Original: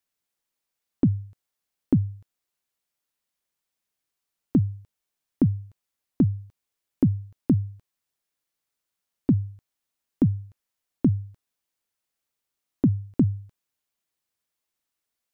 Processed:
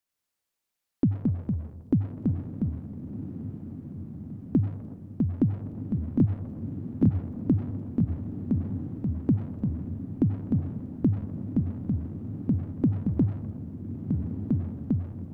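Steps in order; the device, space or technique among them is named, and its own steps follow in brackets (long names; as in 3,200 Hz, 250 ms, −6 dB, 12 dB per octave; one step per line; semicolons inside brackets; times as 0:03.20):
saturated reverb return (on a send at −8 dB: convolution reverb RT60 1.5 s, pre-delay 77 ms + soft clipping −30.5 dBFS, distortion −4 dB)
on the sum: feedback delay with all-pass diffusion 1,368 ms, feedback 58%, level −9 dB
delay with pitch and tempo change per echo 95 ms, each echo −2 semitones, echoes 2
level −3 dB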